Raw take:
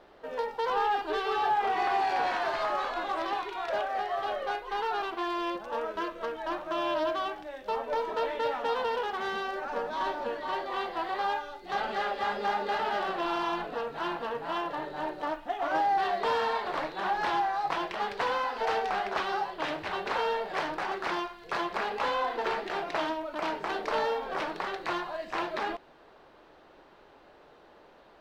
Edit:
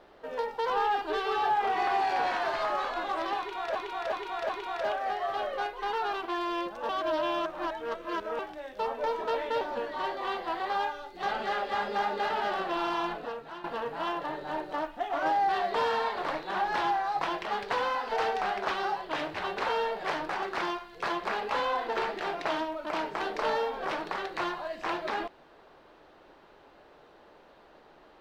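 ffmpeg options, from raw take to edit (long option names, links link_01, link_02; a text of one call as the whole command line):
ffmpeg -i in.wav -filter_complex "[0:a]asplit=8[link_01][link_02][link_03][link_04][link_05][link_06][link_07][link_08];[link_01]atrim=end=3.752[link_09];[link_02]atrim=start=3.378:end=3.752[link_10];[link_03]atrim=start=3.378:end=3.752[link_11];[link_04]atrim=start=3.378:end=5.782[link_12];[link_05]atrim=start=5.778:end=7.282,asetpts=PTS-STARTPTS,areverse[link_13];[link_06]atrim=start=7.278:end=8.502[link_14];[link_07]atrim=start=10.098:end=14.13,asetpts=PTS-STARTPTS,afade=type=out:start_time=3.482:duration=0.55:silence=0.199526[link_15];[link_08]atrim=start=14.13,asetpts=PTS-STARTPTS,afade=type=in:duration=0.004:curve=hsin:silence=0.199526[link_16];[link_09][link_10]acrossfade=duration=0.004:curve1=hsin:curve2=hsin[link_17];[link_17][link_11]acrossfade=duration=0.004:curve1=hsin:curve2=hsin[link_18];[link_18][link_12]acrossfade=duration=0.004:curve1=hsin:curve2=hsin[link_19];[link_19][link_13]acrossfade=duration=0.004:curve1=hsin:curve2=hsin[link_20];[link_20][link_14]acrossfade=duration=0.004:curve1=hsin:curve2=hsin[link_21];[link_15][link_16]concat=n=2:v=0:a=1[link_22];[link_21][link_22]acrossfade=duration=0.004:curve1=hsin:curve2=hsin" out.wav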